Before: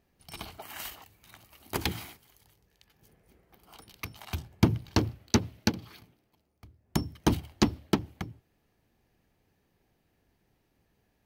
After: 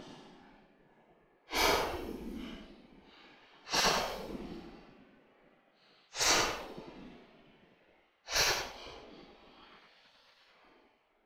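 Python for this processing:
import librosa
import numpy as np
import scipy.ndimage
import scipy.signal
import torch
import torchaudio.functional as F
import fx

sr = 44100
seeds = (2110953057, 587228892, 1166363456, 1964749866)

p1 = fx.paulstretch(x, sr, seeds[0], factor=6.5, window_s=0.05, from_s=4.38)
p2 = fx.env_lowpass(p1, sr, base_hz=2400.0, full_db=-22.5)
p3 = fx.low_shelf(p2, sr, hz=62.0, db=9.5)
p4 = fx.spec_gate(p3, sr, threshold_db=-15, keep='weak')
y = p4 + fx.echo_feedback(p4, sr, ms=99, feedback_pct=17, wet_db=-6.5, dry=0)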